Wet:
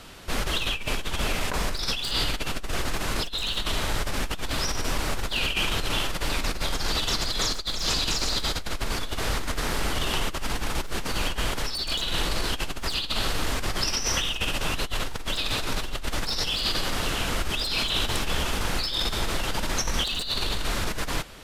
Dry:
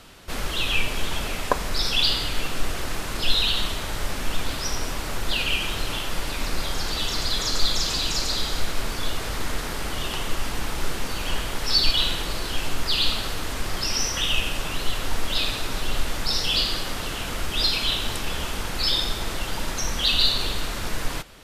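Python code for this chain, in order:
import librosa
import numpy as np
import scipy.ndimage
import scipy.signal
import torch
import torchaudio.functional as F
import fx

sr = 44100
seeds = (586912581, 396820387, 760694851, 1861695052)

y = np.minimum(x, 2.0 * 10.0 ** (-16.0 / 20.0) - x)
y = fx.over_compress(y, sr, threshold_db=-26.0, ratio=-1.0)
y = fx.doppler_dist(y, sr, depth_ms=0.13)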